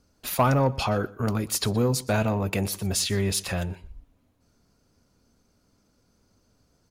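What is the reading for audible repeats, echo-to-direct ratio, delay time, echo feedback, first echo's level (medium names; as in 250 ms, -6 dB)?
1, -20.5 dB, 122 ms, no regular repeats, -20.5 dB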